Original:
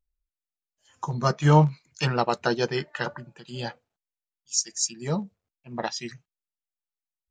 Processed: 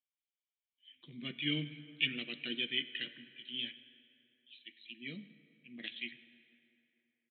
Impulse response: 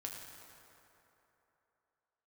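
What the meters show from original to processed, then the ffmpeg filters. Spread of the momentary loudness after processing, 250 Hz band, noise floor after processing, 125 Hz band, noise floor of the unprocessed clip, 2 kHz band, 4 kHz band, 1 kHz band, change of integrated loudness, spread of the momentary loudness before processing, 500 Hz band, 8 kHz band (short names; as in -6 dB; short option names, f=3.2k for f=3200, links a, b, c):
19 LU, -14.5 dB, under -85 dBFS, -24.0 dB, under -85 dBFS, -6.5 dB, -2.0 dB, under -35 dB, -12.5 dB, 18 LU, -24.5 dB, under -40 dB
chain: -filter_complex "[0:a]asplit=3[a][b][c];[a]bandpass=f=270:t=q:w=8,volume=0dB[d];[b]bandpass=f=2.29k:t=q:w=8,volume=-6dB[e];[c]bandpass=f=3.01k:t=q:w=8,volume=-9dB[f];[d][e][f]amix=inputs=3:normalize=0,aexciter=amount=8.9:drive=5.3:freq=2k,asplit=2[g][h];[1:a]atrim=start_sample=2205[i];[h][i]afir=irnorm=-1:irlink=0,volume=-6dB[j];[g][j]amix=inputs=2:normalize=0,aresample=8000,aresample=44100,volume=-7dB"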